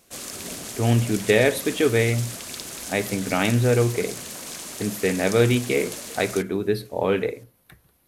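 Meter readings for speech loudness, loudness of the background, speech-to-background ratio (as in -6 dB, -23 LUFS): -23.0 LUFS, -33.0 LUFS, 10.0 dB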